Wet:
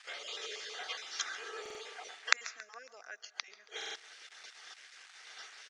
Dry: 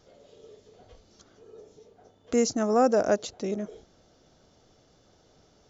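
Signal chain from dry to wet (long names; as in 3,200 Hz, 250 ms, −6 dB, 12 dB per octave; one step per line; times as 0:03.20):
time-frequency cells dropped at random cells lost 21%
noise gate −59 dBFS, range −12 dB
comb filter 2.5 ms, depth 34%
in parallel at +2.5 dB: downward compressor 12 to 1, threshold −38 dBFS, peak gain reduction 20 dB
on the sum: bit reduction 11 bits
gate with flip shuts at −24 dBFS, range −30 dB
high-frequency loss of the air 68 metres
repeating echo 138 ms, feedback 53%, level −19.5 dB
on a send at −20 dB: convolution reverb RT60 0.55 s, pre-delay 100 ms
on the sum: downsampling to 22,050 Hz
high-pass with resonance 1,800 Hz, resonance Q 2.1
buffer that repeats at 0:01.61/0:03.77, samples 2,048, times 3
level +15.5 dB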